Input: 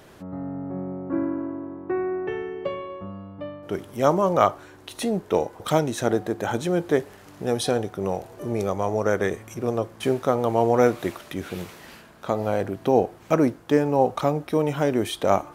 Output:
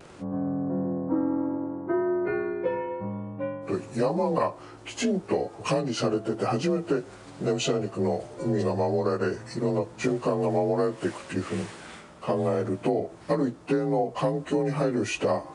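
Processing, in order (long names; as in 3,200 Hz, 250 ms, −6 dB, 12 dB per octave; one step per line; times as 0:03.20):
partials spread apart or drawn together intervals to 90%
pitch vibrato 0.66 Hz 22 cents
downward compressor 12 to 1, threshold −25 dBFS, peak gain reduction 12 dB
level +4 dB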